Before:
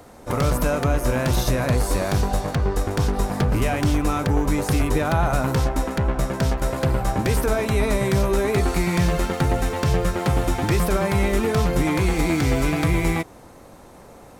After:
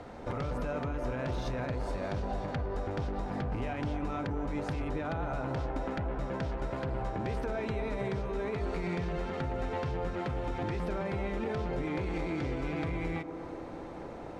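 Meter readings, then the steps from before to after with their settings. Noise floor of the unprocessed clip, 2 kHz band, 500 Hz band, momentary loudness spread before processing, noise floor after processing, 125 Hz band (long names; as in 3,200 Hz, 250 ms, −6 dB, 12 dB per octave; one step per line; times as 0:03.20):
−45 dBFS, −13.5 dB, −11.5 dB, 3 LU, −43 dBFS, −14.0 dB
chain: low-pass filter 3,500 Hz 12 dB per octave
notch filter 1,100 Hz, Q 17
brickwall limiter −17 dBFS, peak gain reduction 7 dB
downward compressor 3 to 1, threshold −35 dBFS, peak gain reduction 11 dB
on a send: delay with a band-pass on its return 239 ms, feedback 76%, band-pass 540 Hz, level −6 dB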